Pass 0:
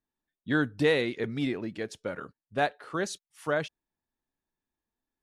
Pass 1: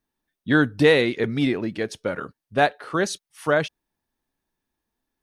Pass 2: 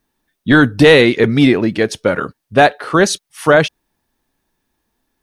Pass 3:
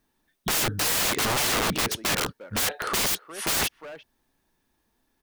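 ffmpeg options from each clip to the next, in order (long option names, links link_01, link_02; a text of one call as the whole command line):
ffmpeg -i in.wav -af "bandreject=frequency=7300:width=8.5,volume=8dB" out.wav
ffmpeg -i in.wav -af "apsyclip=13.5dB,volume=-2dB" out.wav
ffmpeg -i in.wav -filter_complex "[0:a]asplit=2[link_01][link_02];[link_02]adelay=350,highpass=300,lowpass=3400,asoftclip=type=hard:threshold=-10dB,volume=-24dB[link_03];[link_01][link_03]amix=inputs=2:normalize=0,aeval=exprs='(mod(7.08*val(0)+1,2)-1)/7.08':channel_layout=same,volume=-2.5dB" out.wav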